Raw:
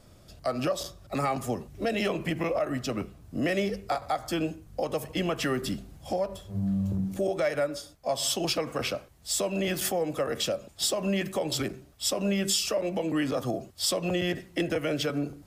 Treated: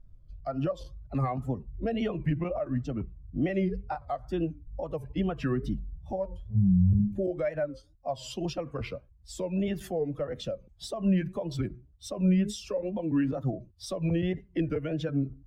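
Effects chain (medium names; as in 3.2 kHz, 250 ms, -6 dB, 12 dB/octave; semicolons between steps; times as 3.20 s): expander on every frequency bin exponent 1.5; wow and flutter 130 cents; RIAA curve playback; trim -3 dB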